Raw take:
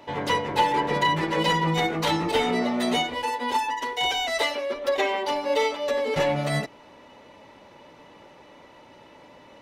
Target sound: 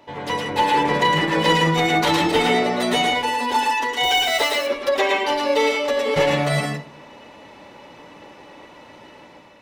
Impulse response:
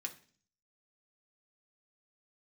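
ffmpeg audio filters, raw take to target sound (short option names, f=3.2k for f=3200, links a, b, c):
-filter_complex "[0:a]dynaudnorm=f=220:g=5:m=7dB,asettb=1/sr,asplit=3[a][b][c];[a]atrim=end=4.034[d];[b]atrim=start=4.03:end=4.56,asetpts=PTS-STARTPTS,afade=t=in:d=0.004:c=qsin,afade=t=out:st=0.526:d=0.004:c=qsin,acrusher=bits=6:dc=4:mix=0:aa=0.000001[e];[c]atrim=start=4.556[f];[d][e]acrossfade=d=0.004:c1=hsin:c2=qsin[g];[g][f]acrossfade=d=0.004:c1=qsin:c2=hsin,asplit=2[h][i];[1:a]atrim=start_sample=2205,adelay=110[j];[i][j]afir=irnorm=-1:irlink=0,volume=0.5dB[k];[h][k]amix=inputs=2:normalize=0,volume=-2.5dB"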